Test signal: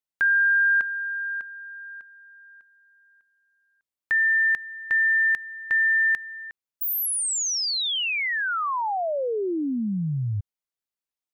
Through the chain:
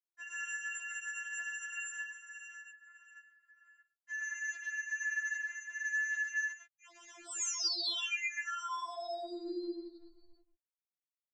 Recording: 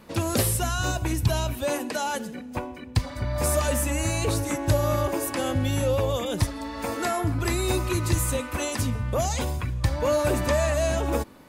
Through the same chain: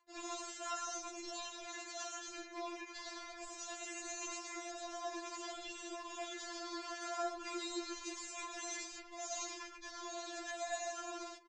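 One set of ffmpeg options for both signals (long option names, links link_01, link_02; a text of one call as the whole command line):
ffmpeg -i in.wav -filter_complex "[0:a]asplit=2[link_01][link_02];[link_02]acrusher=samples=10:mix=1:aa=0.000001,volume=-8.5dB[link_03];[link_01][link_03]amix=inputs=2:normalize=0,acompressor=mode=upward:threshold=-42dB:ratio=2.5:attack=0.45:release=1000:knee=2.83:detection=peak,aemphasis=mode=production:type=50fm,areverse,acompressor=threshold=-29dB:ratio=8:attack=0.28:release=232:knee=1:detection=peak,areverse,highpass=frequency=940:poles=1,highshelf=frequency=5100:gain=-2.5,aecho=1:1:105|137:0.631|0.501,anlmdn=0.0251,aresample=16000,aresample=44100,afftfilt=real='hypot(re,im)*cos(2*PI*random(0))':imag='hypot(re,im)*sin(2*PI*random(1))':win_size=512:overlap=0.75,afftfilt=real='re*4*eq(mod(b,16),0)':imag='im*4*eq(mod(b,16),0)':win_size=2048:overlap=0.75,volume=6dB" out.wav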